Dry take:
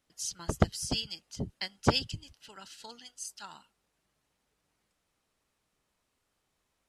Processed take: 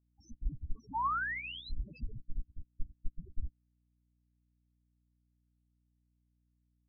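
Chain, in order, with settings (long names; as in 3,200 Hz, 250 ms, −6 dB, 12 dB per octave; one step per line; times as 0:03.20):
loose part that buzzes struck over −25 dBFS, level −21 dBFS
high-pass filter 95 Hz 6 dB per octave
spectral tilt +2 dB per octave
sound drawn into the spectrogram rise, 0:00.94–0:01.70, 850–4,200 Hz −29 dBFS
feedback echo with a high-pass in the loop 205 ms, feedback 68%, high-pass 240 Hz, level −13 dB
comparator with hysteresis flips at −32 dBFS
spectral peaks only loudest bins 2
mains hum 60 Hz, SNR 11 dB
expander for the loud parts 2.5 to 1, over −56 dBFS
level +11 dB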